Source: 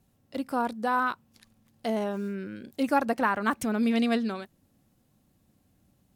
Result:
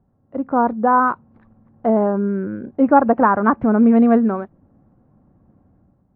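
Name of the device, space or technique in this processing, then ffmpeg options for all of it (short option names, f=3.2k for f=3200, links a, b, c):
action camera in a waterproof case: -af "lowpass=f=1.3k:w=0.5412,lowpass=f=1.3k:w=1.3066,dynaudnorm=f=100:g=9:m=7.5dB,volume=5dB" -ar 22050 -c:a aac -b:a 48k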